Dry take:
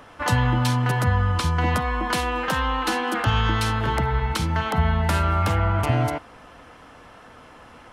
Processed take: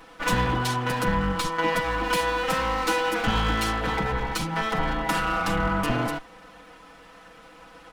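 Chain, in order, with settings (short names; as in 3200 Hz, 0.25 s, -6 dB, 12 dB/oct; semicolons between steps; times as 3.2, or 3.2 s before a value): minimum comb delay 6.1 ms; comb 4 ms, depth 52%; gain -1.5 dB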